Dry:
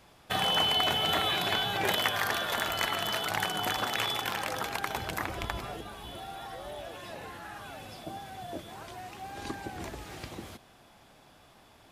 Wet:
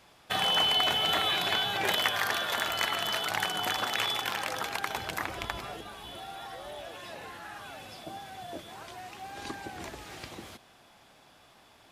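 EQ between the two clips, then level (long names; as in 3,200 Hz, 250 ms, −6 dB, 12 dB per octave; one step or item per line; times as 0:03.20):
spectral tilt +1.5 dB per octave
high-shelf EQ 8,200 Hz −8.5 dB
0.0 dB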